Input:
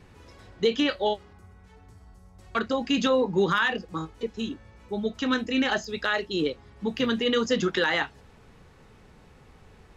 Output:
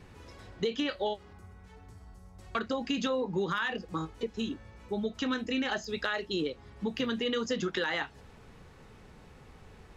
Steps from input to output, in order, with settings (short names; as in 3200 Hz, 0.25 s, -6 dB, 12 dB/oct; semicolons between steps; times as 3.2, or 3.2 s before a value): compressor 3:1, threshold -30 dBFS, peak gain reduction 9 dB